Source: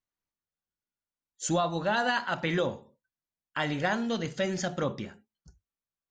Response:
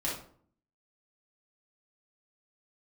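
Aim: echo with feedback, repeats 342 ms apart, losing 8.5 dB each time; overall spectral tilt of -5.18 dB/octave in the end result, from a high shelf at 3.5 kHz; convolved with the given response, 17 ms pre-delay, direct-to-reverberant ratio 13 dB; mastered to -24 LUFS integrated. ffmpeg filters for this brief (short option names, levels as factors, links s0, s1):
-filter_complex "[0:a]highshelf=f=3500:g=-5.5,aecho=1:1:342|684|1026|1368:0.376|0.143|0.0543|0.0206,asplit=2[s0][s1];[1:a]atrim=start_sample=2205,adelay=17[s2];[s1][s2]afir=irnorm=-1:irlink=0,volume=0.119[s3];[s0][s3]amix=inputs=2:normalize=0,volume=2"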